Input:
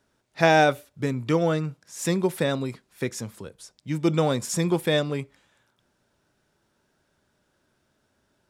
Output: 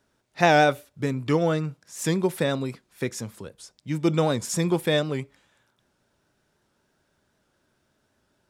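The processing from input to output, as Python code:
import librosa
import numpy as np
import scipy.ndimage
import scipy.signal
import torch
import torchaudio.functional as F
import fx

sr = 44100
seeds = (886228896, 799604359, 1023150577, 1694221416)

y = fx.record_warp(x, sr, rpm=78.0, depth_cents=100.0)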